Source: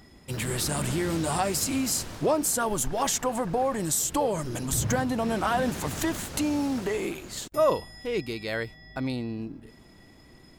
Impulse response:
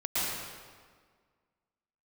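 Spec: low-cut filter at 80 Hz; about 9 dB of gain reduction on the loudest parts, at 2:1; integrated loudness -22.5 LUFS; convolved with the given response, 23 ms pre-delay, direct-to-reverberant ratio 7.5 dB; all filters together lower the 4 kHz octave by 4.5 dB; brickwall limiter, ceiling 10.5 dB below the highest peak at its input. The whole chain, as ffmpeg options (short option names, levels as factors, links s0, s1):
-filter_complex "[0:a]highpass=80,equalizer=f=4000:t=o:g=-6,acompressor=threshold=0.0178:ratio=2,alimiter=level_in=1.5:limit=0.0631:level=0:latency=1,volume=0.668,asplit=2[s0][s1];[1:a]atrim=start_sample=2205,adelay=23[s2];[s1][s2]afir=irnorm=-1:irlink=0,volume=0.15[s3];[s0][s3]amix=inputs=2:normalize=0,volume=4.73"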